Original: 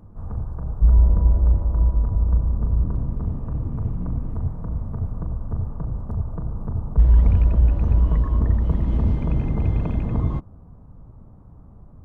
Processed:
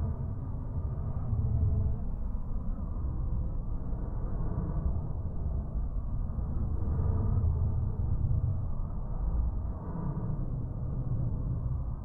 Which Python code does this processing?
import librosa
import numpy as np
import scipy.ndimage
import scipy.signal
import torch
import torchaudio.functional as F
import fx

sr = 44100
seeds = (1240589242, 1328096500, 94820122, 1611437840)

y = fx.granulator(x, sr, seeds[0], grain_ms=100.0, per_s=20.0, spray_ms=100.0, spread_st=0)
y = fx.paulstretch(y, sr, seeds[1], factor=11.0, window_s=0.1, from_s=4.9)
y = fx.record_warp(y, sr, rpm=78.0, depth_cents=100.0)
y = y * librosa.db_to_amplitude(-4.0)